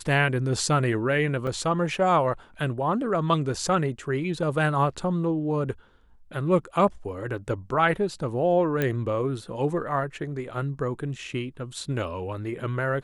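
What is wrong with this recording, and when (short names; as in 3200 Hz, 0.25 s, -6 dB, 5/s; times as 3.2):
1.47 gap 4.5 ms
8.82 pop -12 dBFS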